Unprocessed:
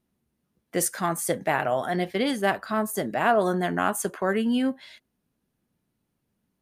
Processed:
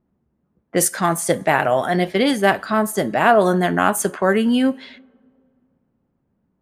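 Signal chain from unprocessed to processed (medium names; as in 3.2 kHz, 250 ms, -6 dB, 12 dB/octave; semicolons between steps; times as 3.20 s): two-slope reverb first 0.33 s, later 2.4 s, from -18 dB, DRR 17 dB; level-controlled noise filter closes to 1.2 kHz, open at -23 dBFS; trim +7.5 dB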